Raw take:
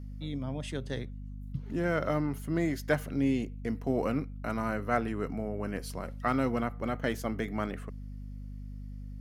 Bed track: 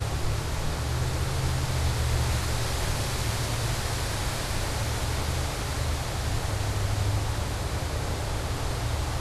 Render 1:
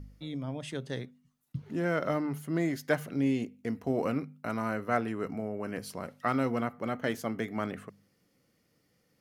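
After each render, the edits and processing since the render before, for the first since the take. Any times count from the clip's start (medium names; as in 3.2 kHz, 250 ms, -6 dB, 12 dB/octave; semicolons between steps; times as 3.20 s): de-hum 50 Hz, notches 5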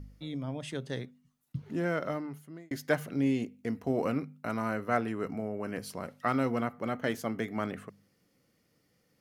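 1.77–2.71 s: fade out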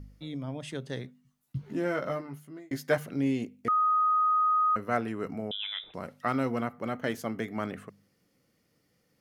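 1.03–2.98 s: doubling 15 ms -5 dB; 3.68–4.76 s: bleep 1.25 kHz -21.5 dBFS; 5.51–5.94 s: frequency inversion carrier 3.7 kHz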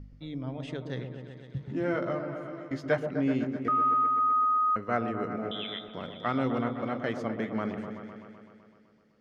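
distance through air 130 m; delay with an opening low-pass 127 ms, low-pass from 750 Hz, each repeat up 1 oct, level -6 dB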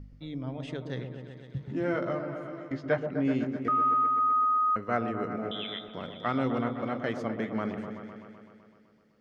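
2.72–3.25 s: distance through air 130 m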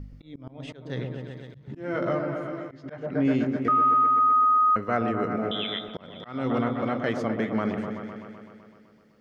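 in parallel at 0 dB: peak limiter -23 dBFS, peak gain reduction 10 dB; on the sum: slow attack 303 ms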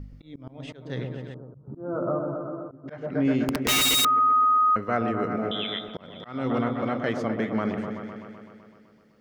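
1.34–2.88 s: elliptic low-pass 1.3 kHz; 3.45–4.05 s: integer overflow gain 18 dB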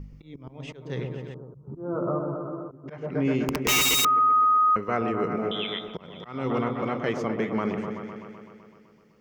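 rippled EQ curve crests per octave 0.76, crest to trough 6 dB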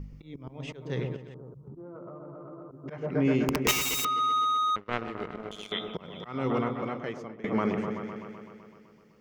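1.16–2.84 s: compression 10:1, threshold -40 dBFS; 3.71–5.72 s: power-law waveshaper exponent 2; 6.38–7.44 s: fade out, to -22 dB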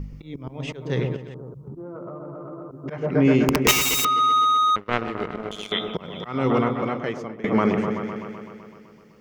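trim +7.5 dB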